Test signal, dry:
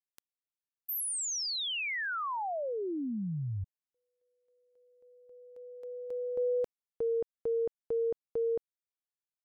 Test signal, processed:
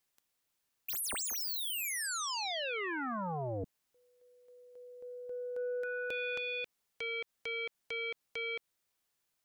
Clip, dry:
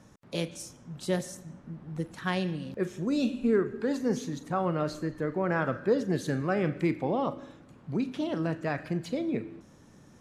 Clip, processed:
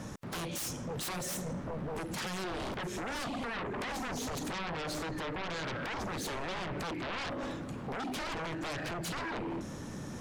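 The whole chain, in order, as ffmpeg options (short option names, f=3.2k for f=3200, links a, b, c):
-af "acompressor=threshold=-33dB:ratio=8:attack=0.49:release=193:knee=1:detection=rms,aeval=exprs='0.0501*sin(PI/2*7.94*val(0)/0.0501)':c=same,volume=-8dB"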